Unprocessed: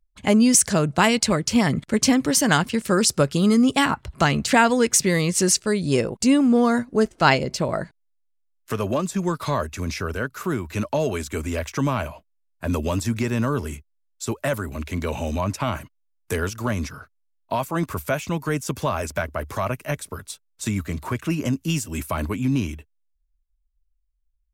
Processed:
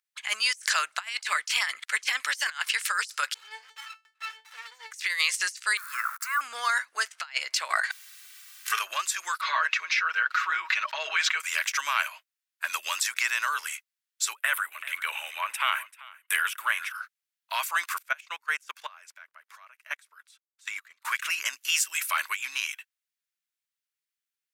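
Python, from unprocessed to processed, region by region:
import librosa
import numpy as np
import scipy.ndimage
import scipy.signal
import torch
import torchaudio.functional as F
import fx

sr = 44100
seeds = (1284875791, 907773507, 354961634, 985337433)

y = fx.chain(x, sr, fx.lowpass(hz=4500.0, slope=12),
    fx.comb_fb(f0_hz=440.0, decay_s=0.2, harmonics='odd', damping=0.0, mix_pct=100),
    fx.running_max(window=17), at=(3.34, 4.91))
y = fx.chain(y, sr, fx.crossing_spikes(level_db=-21.0),
    fx.curve_eq(hz=(130.0, 320.0, 490.0, 710.0, 1300.0, 1900.0, 3000.0, 14000.0), db=(0, -18, -22, -14, 15, -4, -25, -11)), at=(5.77, 6.41))
y = fx.chain(y, sr, fx.comb(ms=2.6, depth=0.62),
    fx.env_flatten(amount_pct=100), at=(7.7, 8.79))
y = fx.chain(y, sr, fx.air_absorb(metres=220.0),
    fx.comb(ms=6.3, depth=0.83),
    fx.sustainer(db_per_s=49.0), at=(9.41, 11.4))
y = fx.chain(y, sr, fx.band_shelf(hz=5500.0, db=-13.5, octaves=1.0),
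    fx.echo_single(ms=389, db=-16.0),
    fx.band_widen(depth_pct=40), at=(14.35, 16.95))
y = fx.chain(y, sr, fx.tilt_eq(slope=-2.5),
    fx.level_steps(step_db=18),
    fx.upward_expand(threshold_db=-34.0, expansion=1.5), at=(17.98, 21.05))
y = scipy.signal.sosfilt(scipy.signal.butter(4, 1500.0, 'highpass', fs=sr, output='sos'), y)
y = fx.high_shelf(y, sr, hz=2200.0, db=-7.0)
y = fx.over_compress(y, sr, threshold_db=-35.0, ratio=-0.5)
y = F.gain(torch.from_numpy(y), 9.0).numpy()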